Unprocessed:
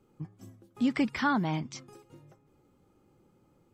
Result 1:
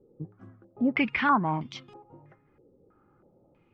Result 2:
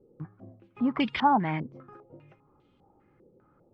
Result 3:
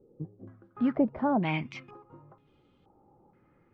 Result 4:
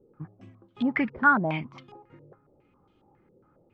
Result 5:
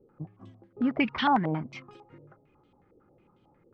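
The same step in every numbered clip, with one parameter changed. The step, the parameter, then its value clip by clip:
low-pass on a step sequencer, speed: 3.1, 5, 2.1, 7.3, 11 Hertz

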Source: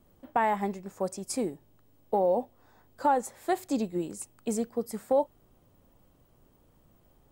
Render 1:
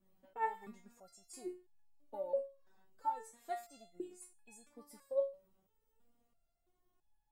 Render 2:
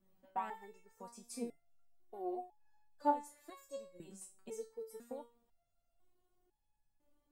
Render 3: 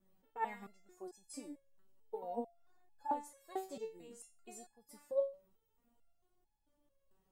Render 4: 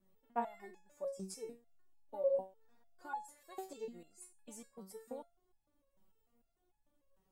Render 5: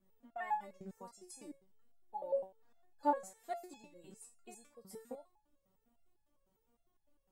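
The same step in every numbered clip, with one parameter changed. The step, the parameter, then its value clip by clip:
step-sequenced resonator, speed: 3, 2, 4.5, 6.7, 9.9 Hertz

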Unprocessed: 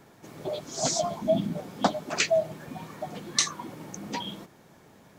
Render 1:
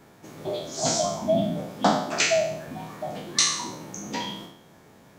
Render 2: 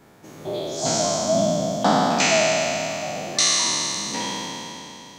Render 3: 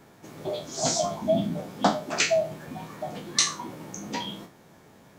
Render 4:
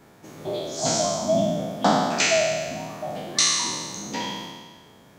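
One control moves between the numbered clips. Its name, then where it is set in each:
peak hold with a decay on every bin, RT60: 0.7, 3.19, 0.33, 1.52 seconds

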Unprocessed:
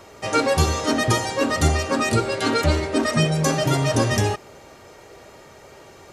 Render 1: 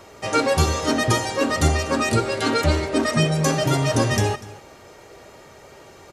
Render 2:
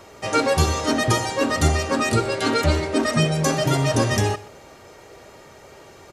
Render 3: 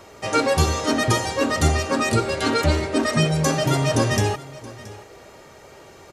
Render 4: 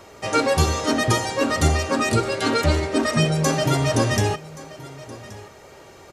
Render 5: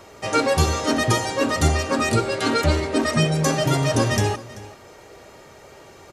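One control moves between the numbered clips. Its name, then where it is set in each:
single-tap delay, delay time: 244, 125, 675, 1,126, 386 milliseconds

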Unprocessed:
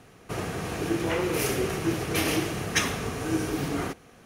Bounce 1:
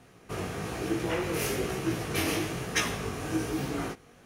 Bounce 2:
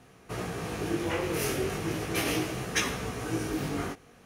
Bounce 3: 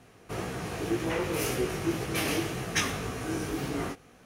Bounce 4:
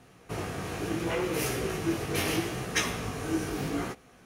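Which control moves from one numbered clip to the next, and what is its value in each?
chorus effect, speed: 1.1, 0.36, 1.9, 0.74 Hertz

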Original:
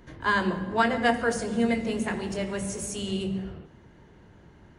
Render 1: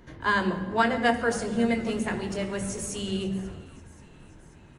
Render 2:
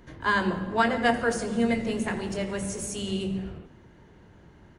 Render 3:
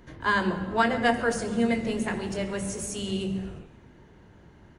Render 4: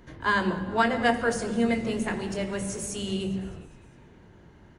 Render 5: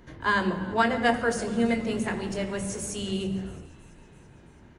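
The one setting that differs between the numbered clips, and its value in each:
echo with shifted repeats, delay time: 534, 86, 131, 204, 333 milliseconds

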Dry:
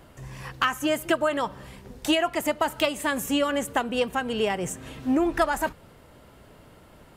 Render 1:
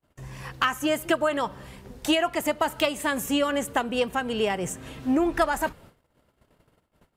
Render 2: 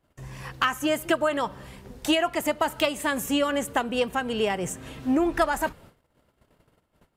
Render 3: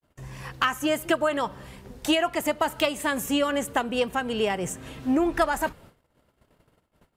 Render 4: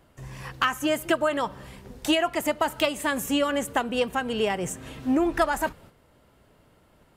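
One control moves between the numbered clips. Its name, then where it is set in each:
noise gate, range: −37, −23, −57, −8 decibels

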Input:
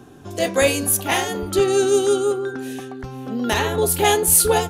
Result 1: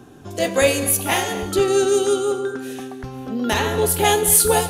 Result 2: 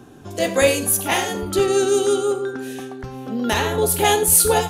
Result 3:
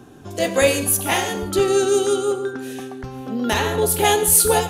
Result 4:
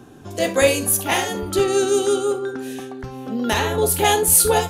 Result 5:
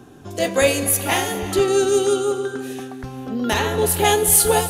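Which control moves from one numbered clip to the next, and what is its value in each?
reverb whose tail is shaped and stops, gate: 290, 130, 190, 90, 450 milliseconds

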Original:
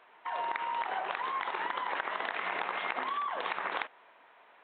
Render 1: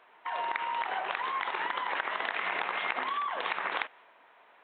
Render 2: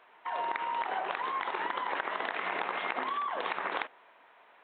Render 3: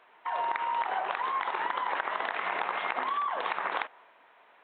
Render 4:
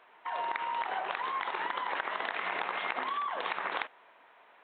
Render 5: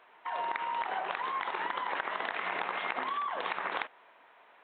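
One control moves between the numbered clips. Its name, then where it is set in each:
dynamic equaliser, frequency: 2,600, 310, 910, 7,400, 120 Hertz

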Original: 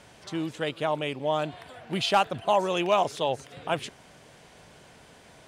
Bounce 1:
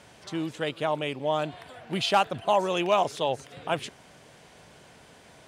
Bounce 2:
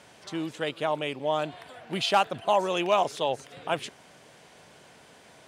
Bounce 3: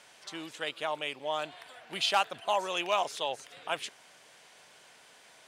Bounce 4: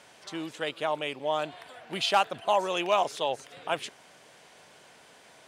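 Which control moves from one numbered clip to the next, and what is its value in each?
high-pass filter, corner frequency: 43, 180, 1,300, 500 Hertz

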